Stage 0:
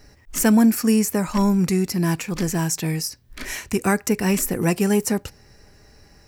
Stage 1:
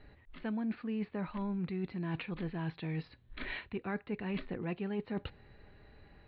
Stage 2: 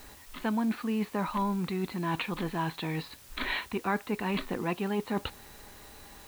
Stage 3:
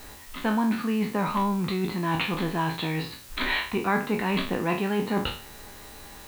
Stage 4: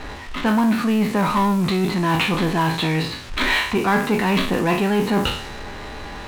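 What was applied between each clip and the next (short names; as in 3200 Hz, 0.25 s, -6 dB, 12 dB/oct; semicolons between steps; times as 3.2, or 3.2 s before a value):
steep low-pass 4100 Hz 96 dB/oct; reverse; compressor 6:1, threshold -28 dBFS, peak gain reduction 15 dB; reverse; gain -6.5 dB
graphic EQ 125/250/1000/4000 Hz -5/+4/+11/+10 dB; in parallel at -6 dB: requantised 8-bit, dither triangular
spectral trails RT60 0.42 s; gain +4 dB
low-pass opened by the level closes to 2600 Hz, open at -22 dBFS; power-law curve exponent 0.7; gain +3.5 dB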